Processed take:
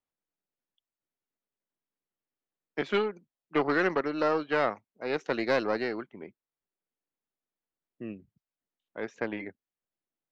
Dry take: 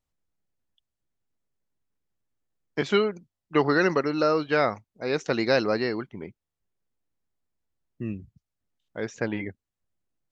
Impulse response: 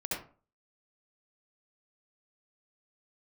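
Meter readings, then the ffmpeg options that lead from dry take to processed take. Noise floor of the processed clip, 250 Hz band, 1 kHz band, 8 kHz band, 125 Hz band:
below −85 dBFS, −5.0 dB, −3.0 dB, can't be measured, −10.0 dB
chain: -filter_complex "[0:a]aeval=exprs='(tanh(6.31*val(0)+0.75)-tanh(0.75))/6.31':channel_layout=same,acrossover=split=200 3700:gain=0.158 1 0.251[link_01][link_02][link_03];[link_01][link_02][link_03]amix=inputs=3:normalize=0"

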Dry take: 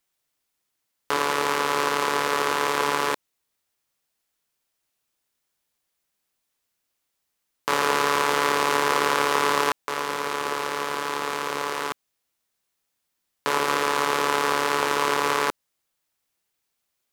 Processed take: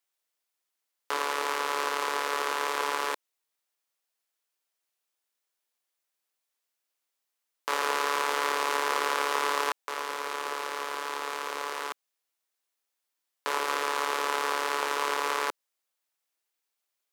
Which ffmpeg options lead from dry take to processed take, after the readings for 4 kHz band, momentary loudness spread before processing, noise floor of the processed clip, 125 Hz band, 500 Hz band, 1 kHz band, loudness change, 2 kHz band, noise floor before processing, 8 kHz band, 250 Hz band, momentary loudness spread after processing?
−5.5 dB, 7 LU, −84 dBFS, below −20 dB, −7.5 dB, −5.5 dB, −6.0 dB, −5.5 dB, −78 dBFS, −5.5 dB, −12.0 dB, 7 LU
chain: -af "highpass=400,volume=-5.5dB"

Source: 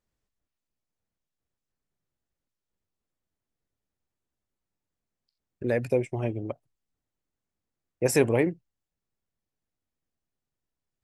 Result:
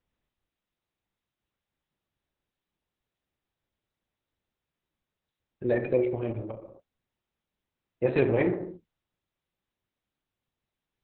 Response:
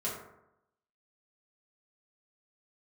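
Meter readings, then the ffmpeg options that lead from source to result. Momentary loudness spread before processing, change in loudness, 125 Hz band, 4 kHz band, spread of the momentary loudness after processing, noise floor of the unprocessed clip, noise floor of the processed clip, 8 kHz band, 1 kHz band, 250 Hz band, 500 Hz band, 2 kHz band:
13 LU, −1.0 dB, −2.0 dB, can't be measured, 16 LU, below −85 dBFS, below −85 dBFS, below −40 dB, −1.5 dB, −0.5 dB, 0.0 dB, −2.0 dB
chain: -filter_complex "[0:a]asplit=2[link_01][link_02];[1:a]atrim=start_sample=2205,afade=type=out:start_time=0.29:duration=0.01,atrim=end_sample=13230,asetrate=37485,aresample=44100[link_03];[link_02][link_03]afir=irnorm=-1:irlink=0,volume=-7.5dB[link_04];[link_01][link_04]amix=inputs=2:normalize=0,volume=-4dB" -ar 48000 -c:a libopus -b:a 6k

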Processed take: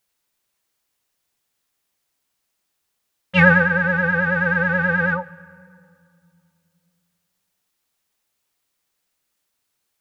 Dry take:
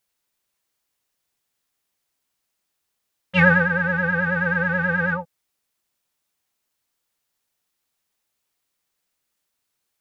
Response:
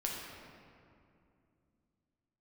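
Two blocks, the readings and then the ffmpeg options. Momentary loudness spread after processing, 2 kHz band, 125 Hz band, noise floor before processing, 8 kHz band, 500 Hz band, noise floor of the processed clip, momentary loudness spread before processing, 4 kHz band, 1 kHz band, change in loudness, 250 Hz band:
8 LU, +2.5 dB, +2.0 dB, −78 dBFS, can't be measured, +2.5 dB, −75 dBFS, 8 LU, +2.5 dB, +2.5 dB, +2.5 dB, +2.0 dB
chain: -filter_complex "[0:a]asplit=2[link_01][link_02];[1:a]atrim=start_sample=2205,adelay=142[link_03];[link_02][link_03]afir=irnorm=-1:irlink=0,volume=-23.5dB[link_04];[link_01][link_04]amix=inputs=2:normalize=0,volume=2.5dB"

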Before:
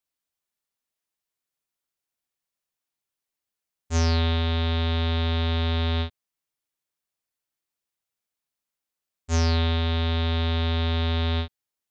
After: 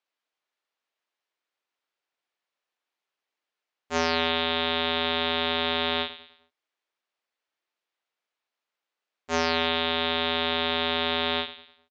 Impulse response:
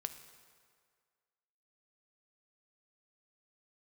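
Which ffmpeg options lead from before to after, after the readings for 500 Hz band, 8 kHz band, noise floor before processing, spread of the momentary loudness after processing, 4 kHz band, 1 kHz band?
+3.5 dB, can't be measured, below −85 dBFS, 5 LU, +5.0 dB, +5.5 dB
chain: -af "highpass=390,lowpass=3500,aecho=1:1:103|206|309|412:0.2|0.0818|0.0335|0.0138,volume=6.5dB"

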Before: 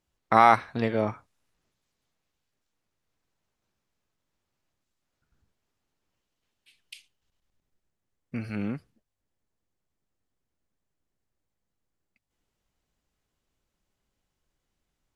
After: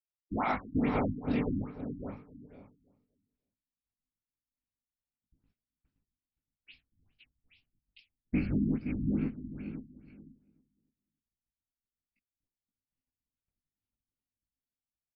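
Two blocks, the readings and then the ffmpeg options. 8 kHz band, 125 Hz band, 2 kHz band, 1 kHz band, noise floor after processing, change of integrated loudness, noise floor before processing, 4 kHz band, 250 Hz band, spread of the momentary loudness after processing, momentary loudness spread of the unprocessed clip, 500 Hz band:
below −20 dB, +1.5 dB, −9.5 dB, −14.0 dB, below −85 dBFS, −9.0 dB, −83 dBFS, below −10 dB, +3.0 dB, 14 LU, 19 LU, −8.0 dB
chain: -filter_complex "[0:a]afftfilt=real='hypot(re,im)*cos(2*PI*random(0))':imag='hypot(re,im)*sin(2*PI*random(1))':win_size=512:overlap=0.75,lowshelf=frequency=130:gain=8.5,flanger=delay=18.5:depth=2:speed=0.56,dynaudnorm=framelen=130:gausssize=9:maxgain=9dB,asplit=2[link_01][link_02];[link_02]adelay=292,lowpass=frequency=950:poles=1,volume=-16dB,asplit=2[link_03][link_04];[link_04]adelay=292,lowpass=frequency=950:poles=1,volume=0.34,asplit=2[link_05][link_06];[link_06]adelay=292,lowpass=frequency=950:poles=1,volume=0.34[link_07];[link_03][link_05][link_07]amix=inputs=3:normalize=0[link_08];[link_01][link_08]amix=inputs=2:normalize=0,agate=range=-33dB:threshold=-59dB:ratio=3:detection=peak,equalizer=frequency=250:width_type=o:width=0.67:gain=11,equalizer=frequency=2500:width_type=o:width=0.67:gain=8,equalizer=frequency=6300:width_type=o:width=0.67:gain=9,asplit=2[link_09][link_10];[link_10]aecho=0:1:521|1042|1563:0.473|0.109|0.025[link_11];[link_09][link_11]amix=inputs=2:normalize=0,alimiter=limit=-20dB:level=0:latency=1:release=353,afftfilt=real='re*lt(b*sr/1024,300*pow(5700/300,0.5+0.5*sin(2*PI*2.4*pts/sr)))':imag='im*lt(b*sr/1024,300*pow(5700/300,0.5+0.5*sin(2*PI*2.4*pts/sr)))':win_size=1024:overlap=0.75"

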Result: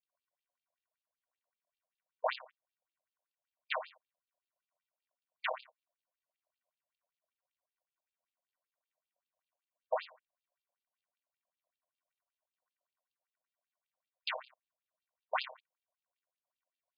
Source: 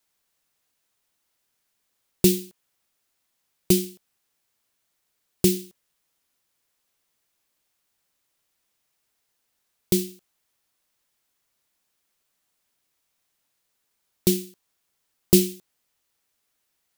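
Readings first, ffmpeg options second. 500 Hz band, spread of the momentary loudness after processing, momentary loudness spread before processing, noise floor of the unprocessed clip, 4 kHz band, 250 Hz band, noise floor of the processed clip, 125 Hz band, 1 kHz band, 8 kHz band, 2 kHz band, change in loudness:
−14.0 dB, 8 LU, 11 LU, −76 dBFS, −12.5 dB, below −40 dB, below −85 dBFS, below −40 dB, +11.5 dB, below −40 dB, +2.5 dB, −16.5 dB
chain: -af "bass=frequency=250:gain=4,treble=frequency=4000:gain=-7,apsyclip=10dB,aeval=exprs='val(0)*sin(2*PI*590*n/s)':channel_layout=same,aresample=11025,acrusher=samples=26:mix=1:aa=0.000001,aresample=44100,afftfilt=real='re*between(b*sr/1024,660*pow(3600/660,0.5+0.5*sin(2*PI*5.2*pts/sr))/1.41,660*pow(3600/660,0.5+0.5*sin(2*PI*5.2*pts/sr))*1.41)':imag='im*between(b*sr/1024,660*pow(3600/660,0.5+0.5*sin(2*PI*5.2*pts/sr))/1.41,660*pow(3600/660,0.5+0.5*sin(2*PI*5.2*pts/sr))*1.41)':win_size=1024:overlap=0.75,volume=-5dB"

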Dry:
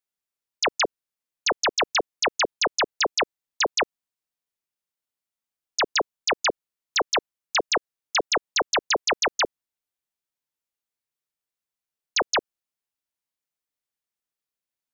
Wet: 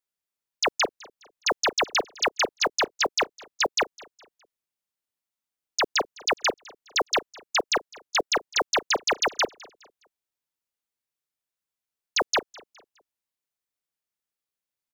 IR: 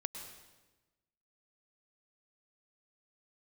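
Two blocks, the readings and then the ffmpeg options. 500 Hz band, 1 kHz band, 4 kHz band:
−1.0 dB, −1.0 dB, −1.0 dB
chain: -af "acrusher=bits=8:mode=log:mix=0:aa=0.000001,aecho=1:1:207|414|621:0.0708|0.0269|0.0102,volume=-1dB"

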